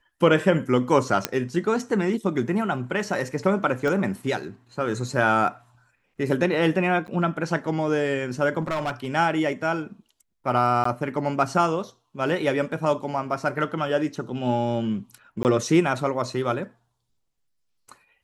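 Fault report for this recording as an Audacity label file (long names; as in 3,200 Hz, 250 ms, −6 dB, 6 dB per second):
1.250000	1.250000	click −5 dBFS
3.880000	3.880000	click −16 dBFS
7.070000	7.080000	drop-out 9.4 ms
8.600000	9.100000	clipping −22.5 dBFS
10.840000	10.850000	drop-out 14 ms
15.430000	15.450000	drop-out 19 ms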